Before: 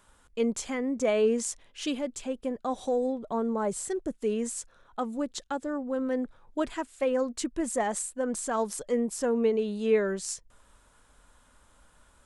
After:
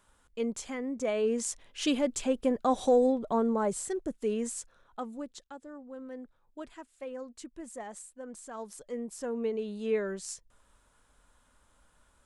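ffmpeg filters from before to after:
ffmpeg -i in.wav -af "volume=12.5dB,afade=type=in:start_time=1.23:duration=0.89:silence=0.334965,afade=type=out:start_time=2.94:duration=0.92:silence=0.473151,afade=type=out:start_time=4.48:duration=1.04:silence=0.266073,afade=type=in:start_time=8.49:duration=1.3:silence=0.398107" out.wav

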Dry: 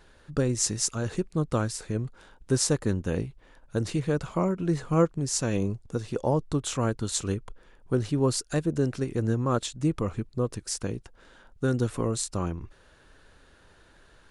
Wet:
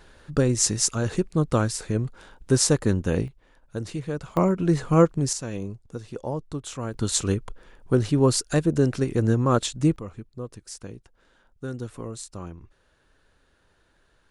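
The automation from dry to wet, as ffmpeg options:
ffmpeg -i in.wav -af "asetnsamples=nb_out_samples=441:pad=0,asendcmd='3.28 volume volume -3.5dB;4.37 volume volume 5dB;5.33 volume volume -5dB;6.94 volume volume 5dB;9.96 volume volume -7.5dB',volume=4.5dB" out.wav

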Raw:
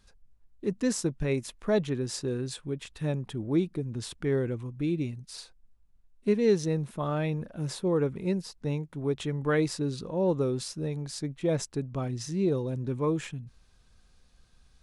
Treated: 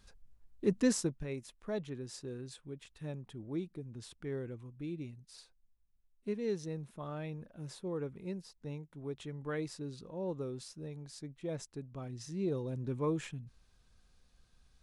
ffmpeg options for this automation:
ffmpeg -i in.wav -af "volume=6.5dB,afade=type=out:start_time=0.79:duration=0.46:silence=0.251189,afade=type=in:start_time=11.99:duration=0.91:silence=0.473151" out.wav

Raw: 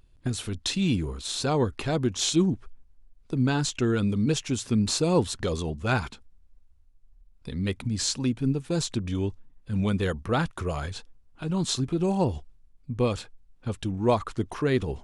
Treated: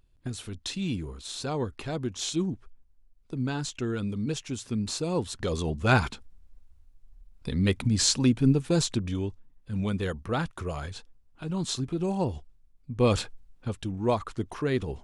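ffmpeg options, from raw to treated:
ffmpeg -i in.wav -af "volume=14.5dB,afade=type=in:start_time=5.25:duration=0.72:silence=0.316228,afade=type=out:start_time=8.6:duration=0.66:silence=0.421697,afade=type=in:start_time=12.96:duration=0.22:silence=0.298538,afade=type=out:start_time=13.18:duration=0.57:silence=0.316228" out.wav

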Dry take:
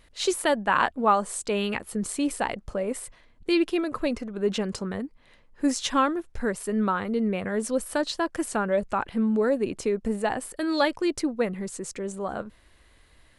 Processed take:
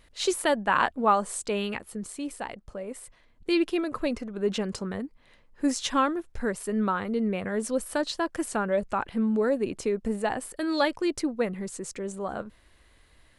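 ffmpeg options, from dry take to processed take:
ffmpeg -i in.wav -af "volume=5.5dB,afade=type=out:start_time=1.39:duration=0.71:silence=0.446684,afade=type=in:start_time=2.93:duration=0.62:silence=0.473151" out.wav

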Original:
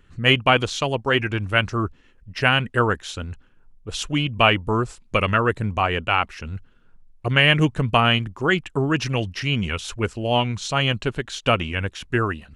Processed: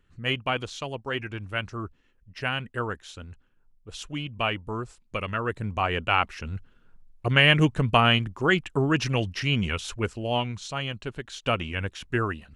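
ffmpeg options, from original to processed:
ffmpeg -i in.wav -af "volume=5dB,afade=type=in:start_time=5.32:duration=0.89:silence=0.375837,afade=type=out:start_time=9.64:duration=1.28:silence=0.334965,afade=type=in:start_time=10.92:duration=0.91:silence=0.446684" out.wav

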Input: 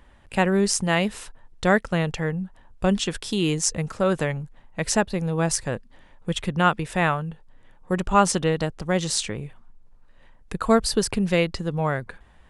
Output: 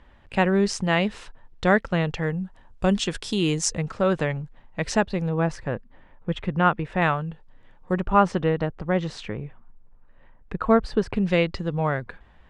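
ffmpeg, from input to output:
ffmpeg -i in.wav -af "asetnsamples=nb_out_samples=441:pad=0,asendcmd='2.24 lowpass f 7900;3.78 lowpass f 4500;5.29 lowpass f 2200;7.02 lowpass f 5000;7.94 lowpass f 2100;11.16 lowpass f 4200',lowpass=4500" out.wav

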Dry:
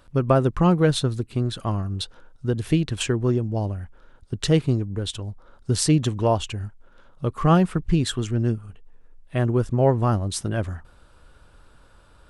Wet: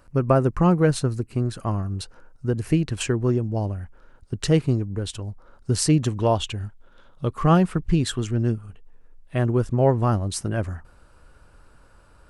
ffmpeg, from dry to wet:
ffmpeg -i in.wav -af "asetnsamples=nb_out_samples=441:pad=0,asendcmd='2.85 equalizer g -7;6.2 equalizer g 5;7.31 equalizer g -2.5;10.34 equalizer g -9.5',equalizer=frequency=3500:width_type=o:width=0.33:gain=-15" out.wav

